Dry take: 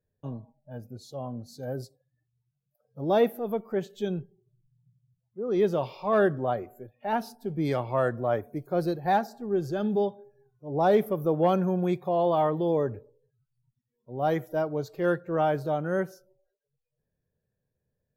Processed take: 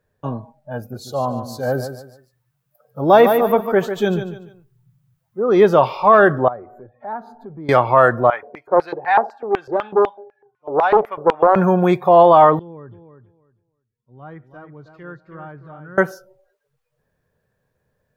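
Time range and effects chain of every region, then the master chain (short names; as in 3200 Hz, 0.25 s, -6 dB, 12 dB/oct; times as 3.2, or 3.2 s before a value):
0.78–5.42 high shelf 11000 Hz +10.5 dB + feedback echo 0.146 s, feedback 31%, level -9.5 dB
6.48–7.69 running mean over 16 samples + compressor 2:1, threshold -55 dBFS
8.3–11.56 bell 860 Hz +7.5 dB 0.6 oct + LFO band-pass square 4 Hz 470–2300 Hz + Doppler distortion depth 0.4 ms
12.59–15.98 treble ducked by the level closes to 1300 Hz, closed at -24 dBFS + passive tone stack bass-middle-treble 6-0-2 + feedback echo 0.319 s, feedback 19%, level -8.5 dB
whole clip: bell 1200 Hz +12.5 dB 1.9 oct; maximiser +10 dB; gain -1 dB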